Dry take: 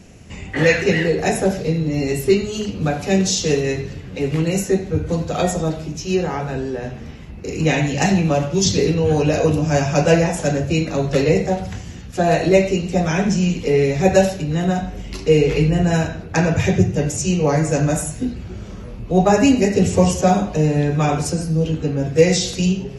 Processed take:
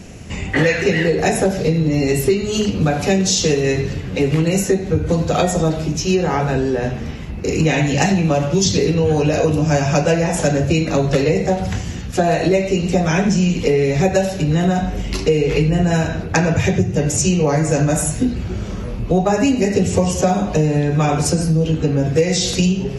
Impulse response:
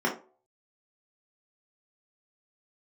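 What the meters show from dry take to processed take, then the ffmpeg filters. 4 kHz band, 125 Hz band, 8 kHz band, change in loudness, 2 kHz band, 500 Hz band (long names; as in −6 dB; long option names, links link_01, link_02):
+2.5 dB, +2.0 dB, +3.0 dB, +1.0 dB, +1.5 dB, +0.5 dB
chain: -af "acompressor=threshold=-20dB:ratio=6,volume=7.5dB"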